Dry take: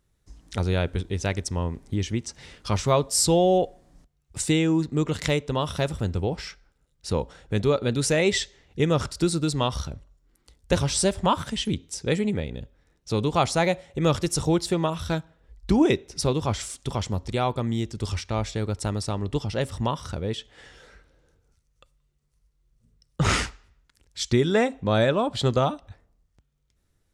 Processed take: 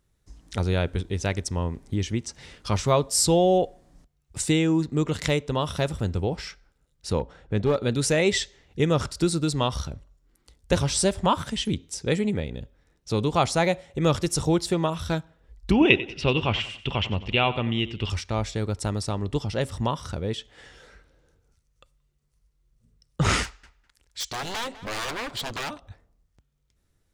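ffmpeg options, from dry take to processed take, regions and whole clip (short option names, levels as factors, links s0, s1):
-filter_complex "[0:a]asettb=1/sr,asplit=3[s0][s1][s2];[s0]atrim=end=7.194[s3];[s1]atrim=start=7.19:end=7.76,asetpts=PTS-STARTPTS,afade=t=in:d=0.004:c=qsin,afade=t=out:st=0.566:d=0.004:c=qsin,aemphasis=mode=reproduction:type=75kf,aeval=exprs='clip(val(0),-1,0.112)':c=same[s4];[s2]atrim=start=7.756[s5];[s3][s4]acrossfade=d=0.004:c1=hsin:c2=qsin[s6];[s6][s5]acrossfade=d=0.004:c1=qsin:c2=hsin,asettb=1/sr,asplit=3[s7][s8][s9];[s7]atrim=end=15.714[s10];[s8]atrim=start=15.71:end=18.1,asetpts=PTS-STARTPTS,afade=t=in:d=0.004:c=qsin,afade=t=out:st=2.386:d=0.004:c=qsin,lowpass=f=2800:t=q:w=11,aecho=1:1:93|186|279:0.168|0.0655|0.0255,atrim=end_sample=105399[s11];[s9]atrim=start=18.096[s12];[s10][s11]acrossfade=d=0.004:c1=hsin:c2=qsin[s13];[s13][s12]acrossfade=d=0.004:c1=qsin:c2=hsin,asettb=1/sr,asplit=3[s14][s15][s16];[s14]atrim=end=23.434[s17];[s15]atrim=start=23.43:end=25.78,asetpts=PTS-STARTPTS,afade=t=in:d=0.004:c=qsin,afade=t=out:st=2.346:d=0.004:c=qsin,aeval=exprs='0.0631*(abs(mod(val(0)/0.0631+3,4)-2)-1)':c=same,equalizer=f=160:w=0.37:g=-8,asplit=2[s18][s19];[s19]adelay=203,lowpass=f=3200:p=1,volume=0.178,asplit=2[s20][s21];[s21]adelay=203,lowpass=f=3200:p=1,volume=0.19[s22];[s18][s20][s22]amix=inputs=3:normalize=0,atrim=end_sample=103635[s23];[s16]atrim=start=25.776[s24];[s17][s23]acrossfade=d=0.004:c1=hsin:c2=qsin[s25];[s25][s24]acrossfade=d=0.004:c1=qsin:c2=hsin"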